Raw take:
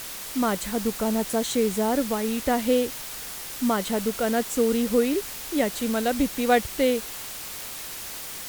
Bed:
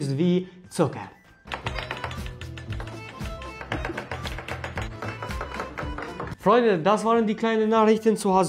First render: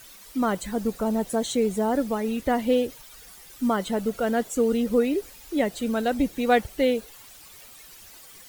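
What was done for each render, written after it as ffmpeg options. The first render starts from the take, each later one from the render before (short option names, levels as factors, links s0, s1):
-af "afftdn=nr=14:nf=-36"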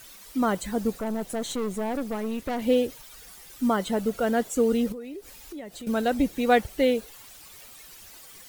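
-filter_complex "[0:a]asettb=1/sr,asplit=3[s0][s1][s2];[s0]atrim=end=0.994[s3];[s1]atrim=start=0.99:end=2.62,asetpts=PTS-STARTPTS,afade=t=in:d=0.004:c=qsin,afade=t=out:st=1.626:d=0.004:c=qsin,aeval=exprs='(tanh(17.8*val(0)+0.55)-tanh(0.55))/17.8':c=same[s4];[s2]atrim=start=2.616[s5];[s3][s4]acrossfade=d=0.004:c1=hsin:c2=qsin[s6];[s6][s5]acrossfade=d=0.004:c1=qsin:c2=hsin,asettb=1/sr,asplit=3[s7][s8][s9];[s7]atrim=end=4.924[s10];[s8]atrim=start=4.92:end=5.87,asetpts=PTS-STARTPTS,afade=t=in:d=0.004:c=qsin,afade=t=out:st=0.946:d=0.004:c=qsin,acompressor=threshold=0.0126:ratio=4:attack=3.2:release=140:knee=1:detection=peak[s11];[s9]atrim=start=5.866[s12];[s10][s11]acrossfade=d=0.004:c1=hsin:c2=qsin[s13];[s13][s12]acrossfade=d=0.004:c1=qsin:c2=hsin"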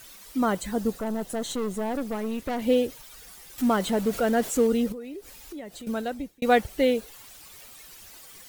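-filter_complex "[0:a]asettb=1/sr,asplit=3[s0][s1][s2];[s0]atrim=end=0.734[s3];[s1]atrim=start=0.73:end=1.98,asetpts=PTS-STARTPTS,afade=t=in:d=0.004:c=qsin,afade=t=out:st=1.246:d=0.004:c=qsin,bandreject=f=2300:w=12[s4];[s2]atrim=start=1.976[s5];[s3][s4]acrossfade=d=0.004:c1=hsin:c2=qsin[s6];[s6][s5]acrossfade=d=0.004:c1=qsin:c2=hsin,asettb=1/sr,asplit=3[s7][s8][s9];[s7]atrim=end=3.584[s10];[s8]atrim=start=3.58:end=4.67,asetpts=PTS-STARTPTS,afade=t=in:d=0.004:c=qsin,afade=t=out:st=1.086:d=0.004:c=qsin,aeval=exprs='val(0)+0.5*0.0211*sgn(val(0))':c=same[s11];[s9]atrim=start=4.666[s12];[s10][s11]acrossfade=d=0.004:c1=hsin:c2=qsin[s13];[s13][s12]acrossfade=d=0.004:c1=qsin:c2=hsin,asplit=2[s14][s15];[s14]atrim=end=6.42,asetpts=PTS-STARTPTS,afade=t=out:st=5.71:d=0.71[s16];[s15]atrim=start=6.42,asetpts=PTS-STARTPTS,afade=t=in:d=0.004:c=hsin[s17];[s16][s17]concat=n=2:v=0:a=1"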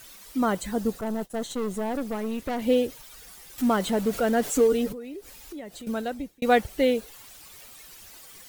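-filter_complex "[0:a]asettb=1/sr,asplit=3[s0][s1][s2];[s0]atrim=end=1.014[s3];[s1]atrim=start=1.01:end=1.64,asetpts=PTS-STARTPTS,afade=t=in:d=0.004:c=qsin,afade=t=out:st=0.626:d=0.004:c=qsin,agate=range=0.0224:threshold=0.0282:ratio=3:release=100:detection=peak[s4];[s2]atrim=start=1.636[s5];[s3][s4]acrossfade=d=0.004:c1=hsin:c2=qsin[s6];[s6][s5]acrossfade=d=0.004:c1=qsin:c2=hsin,asettb=1/sr,asplit=3[s7][s8][s9];[s7]atrim=end=4.444[s10];[s8]atrim=start=4.44:end=4.93,asetpts=PTS-STARTPTS,afade=t=in:d=0.004:c=qsin,afade=t=out:st=0.486:d=0.004:c=qsin,aecho=1:1:6.9:0.65,atrim=end_sample=21609[s11];[s9]atrim=start=4.926[s12];[s10][s11]acrossfade=d=0.004:c1=hsin:c2=qsin[s13];[s13][s12]acrossfade=d=0.004:c1=qsin:c2=hsin"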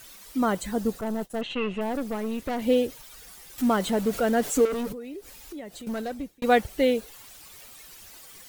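-filter_complex "[0:a]asettb=1/sr,asplit=3[s0][s1][s2];[s0]atrim=end=1.414[s3];[s1]atrim=start=1.41:end=1.81,asetpts=PTS-STARTPTS,afade=t=in:d=0.004:c=qsin,afade=t=out:st=0.396:d=0.004:c=qsin,lowpass=f=2700:t=q:w=16[s4];[s2]atrim=start=1.806[s5];[s3][s4]acrossfade=d=0.004:c1=hsin:c2=qsin[s6];[s6][s5]acrossfade=d=0.004:c1=qsin:c2=hsin,asettb=1/sr,asplit=3[s7][s8][s9];[s7]atrim=end=4.654[s10];[s8]atrim=start=4.65:end=6.44,asetpts=PTS-STARTPTS,afade=t=in:d=0.004:c=qsin,afade=t=out:st=1.786:d=0.004:c=qsin,asoftclip=type=hard:threshold=0.0447[s11];[s9]atrim=start=6.436[s12];[s10][s11]acrossfade=d=0.004:c1=hsin:c2=qsin[s13];[s13][s12]acrossfade=d=0.004:c1=qsin:c2=hsin"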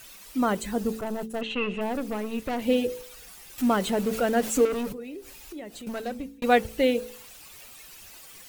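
-af "equalizer=f=2600:t=o:w=0.21:g=5,bandreject=f=55.34:t=h:w=4,bandreject=f=110.68:t=h:w=4,bandreject=f=166.02:t=h:w=4,bandreject=f=221.36:t=h:w=4,bandreject=f=276.7:t=h:w=4,bandreject=f=332.04:t=h:w=4,bandreject=f=387.38:t=h:w=4,bandreject=f=442.72:t=h:w=4,bandreject=f=498.06:t=h:w=4"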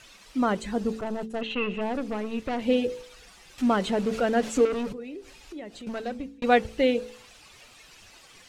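-af "lowpass=5800"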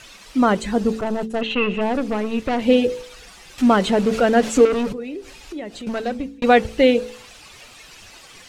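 -af "volume=2.51,alimiter=limit=0.891:level=0:latency=1"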